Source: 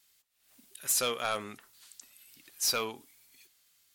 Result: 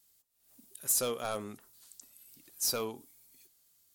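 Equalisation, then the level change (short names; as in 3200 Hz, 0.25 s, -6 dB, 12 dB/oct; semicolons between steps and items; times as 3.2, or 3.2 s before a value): bell 2300 Hz -12.5 dB 2.5 oct; +2.5 dB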